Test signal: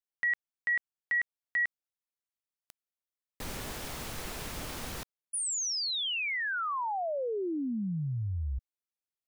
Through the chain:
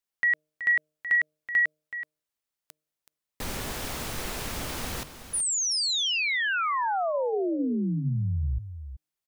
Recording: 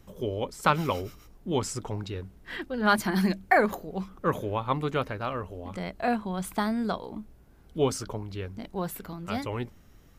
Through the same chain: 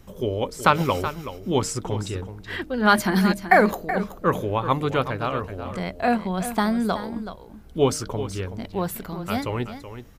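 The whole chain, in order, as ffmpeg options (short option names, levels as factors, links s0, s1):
-filter_complex "[0:a]bandreject=f=153:t=h:w=4,bandreject=f=306:t=h:w=4,bandreject=f=459:t=h:w=4,bandreject=f=612:t=h:w=4,asplit=2[s0][s1];[s1]aecho=0:1:376:0.266[s2];[s0][s2]amix=inputs=2:normalize=0,volume=1.88"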